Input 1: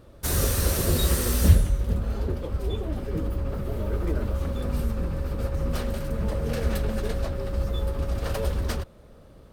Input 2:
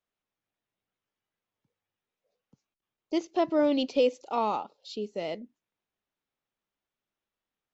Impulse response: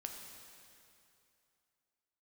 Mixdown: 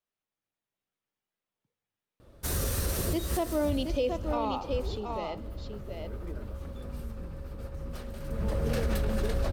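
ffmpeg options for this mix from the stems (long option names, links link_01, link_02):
-filter_complex "[0:a]adelay=2200,volume=6dB,afade=type=out:start_time=4.73:duration=0.61:silence=0.473151,afade=type=in:start_time=8.13:duration=0.66:silence=0.237137,asplit=2[link_01][link_02];[link_02]volume=-12.5dB[link_03];[1:a]volume=-6dB,asplit=4[link_04][link_05][link_06][link_07];[link_05]volume=-7dB[link_08];[link_06]volume=-3.5dB[link_09];[link_07]apad=whole_len=517036[link_10];[link_01][link_10]sidechaincompress=threshold=-44dB:ratio=8:attack=45:release=181[link_11];[2:a]atrim=start_sample=2205[link_12];[link_03][link_08]amix=inputs=2:normalize=0[link_13];[link_13][link_12]afir=irnorm=-1:irlink=0[link_14];[link_09]aecho=0:1:725:1[link_15];[link_11][link_04][link_14][link_15]amix=inputs=4:normalize=0,alimiter=limit=-20dB:level=0:latency=1:release=41"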